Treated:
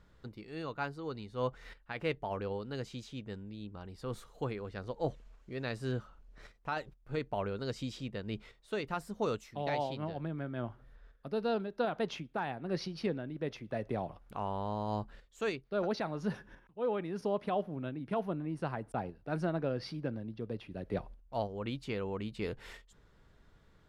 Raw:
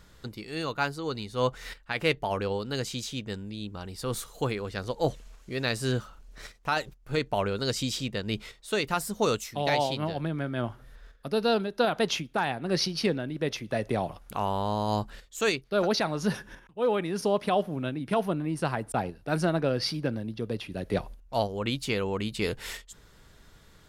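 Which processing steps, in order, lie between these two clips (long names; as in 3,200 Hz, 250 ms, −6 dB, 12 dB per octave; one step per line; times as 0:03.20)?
low-pass filter 1,700 Hz 6 dB per octave
level −7 dB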